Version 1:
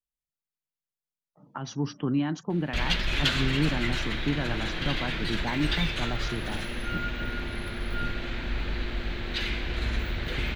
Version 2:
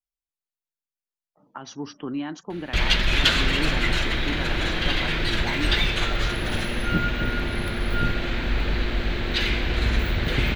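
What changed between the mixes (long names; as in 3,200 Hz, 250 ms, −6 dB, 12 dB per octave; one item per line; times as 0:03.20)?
speech: add parametric band 140 Hz −12 dB 1.1 octaves
first sound +6.5 dB
second sound +10.5 dB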